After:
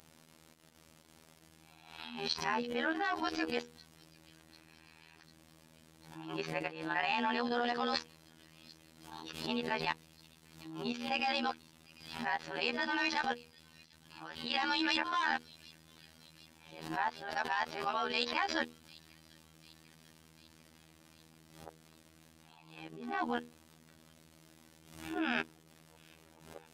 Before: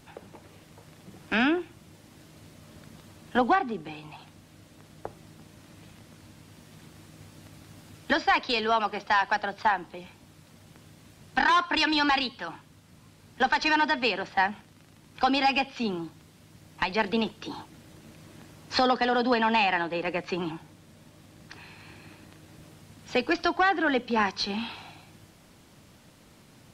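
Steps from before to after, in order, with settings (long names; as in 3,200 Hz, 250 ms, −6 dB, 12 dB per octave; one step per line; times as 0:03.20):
played backwards from end to start
output level in coarse steps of 14 dB
low-shelf EQ 130 Hz −8.5 dB
mains-hum notches 60/120/180/240/300/360/420/480 Hz
on a send: delay with a high-pass on its return 745 ms, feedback 65%, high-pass 4,200 Hz, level −17 dB
on the sum: phases set to zero 80.1 Hz
high-shelf EQ 7,300 Hz +4 dB
background raised ahead of every attack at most 77 dB per second
level −2 dB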